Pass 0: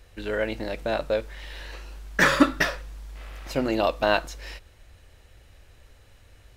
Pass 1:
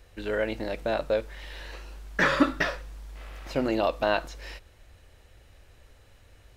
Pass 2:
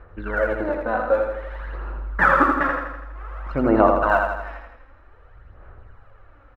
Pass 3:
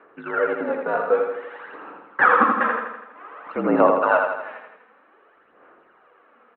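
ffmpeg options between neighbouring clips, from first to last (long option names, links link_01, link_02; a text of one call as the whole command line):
ffmpeg -i in.wav -filter_complex "[0:a]asplit=2[link_01][link_02];[link_02]alimiter=limit=-16dB:level=0:latency=1,volume=-3dB[link_03];[link_01][link_03]amix=inputs=2:normalize=0,equalizer=frequency=530:width=0.44:gain=2,acrossover=split=5300[link_04][link_05];[link_05]acompressor=threshold=-44dB:ratio=4:attack=1:release=60[link_06];[link_04][link_06]amix=inputs=2:normalize=0,volume=-7dB" out.wav
ffmpeg -i in.wav -filter_complex "[0:a]lowpass=frequency=1300:width_type=q:width=3.3,aphaser=in_gain=1:out_gain=1:delay=4:decay=0.63:speed=0.53:type=sinusoidal,asplit=2[link_01][link_02];[link_02]aecho=0:1:82|164|246|328|410|492|574:0.596|0.328|0.18|0.0991|0.0545|0.03|0.0165[link_03];[link_01][link_03]amix=inputs=2:normalize=0" out.wav
ffmpeg -i in.wav -af "crystalizer=i=2:c=0,highpass=frequency=300:width_type=q:width=0.5412,highpass=frequency=300:width_type=q:width=1.307,lowpass=frequency=3300:width_type=q:width=0.5176,lowpass=frequency=3300:width_type=q:width=0.7071,lowpass=frequency=3300:width_type=q:width=1.932,afreqshift=-54" out.wav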